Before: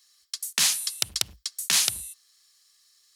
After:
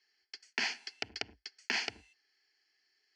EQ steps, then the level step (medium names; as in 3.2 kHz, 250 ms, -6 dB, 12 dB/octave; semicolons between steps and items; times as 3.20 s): distance through air 130 m; cabinet simulation 130–4900 Hz, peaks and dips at 250 Hz +5 dB, 460 Hz +9 dB, 4.4 kHz +10 dB; static phaser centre 780 Hz, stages 8; 0.0 dB